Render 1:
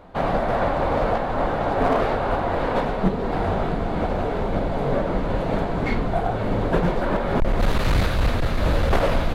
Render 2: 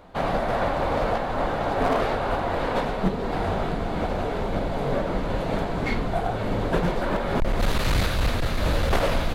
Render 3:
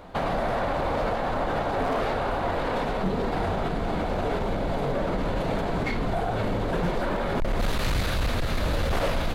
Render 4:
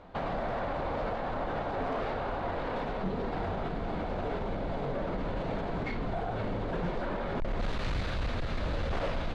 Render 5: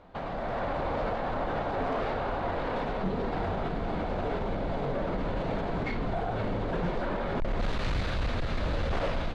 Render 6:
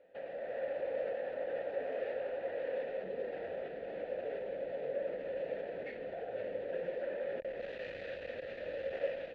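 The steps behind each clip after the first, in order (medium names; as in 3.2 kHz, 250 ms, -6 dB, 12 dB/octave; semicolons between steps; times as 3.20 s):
treble shelf 2.8 kHz +7.5 dB; trim -3 dB
peak limiter -22.5 dBFS, peak gain reduction 11 dB; trim +4 dB
distance through air 110 m; trim -6.5 dB
level rider gain up to 5 dB; trim -2.5 dB
vowel filter e; trim +2 dB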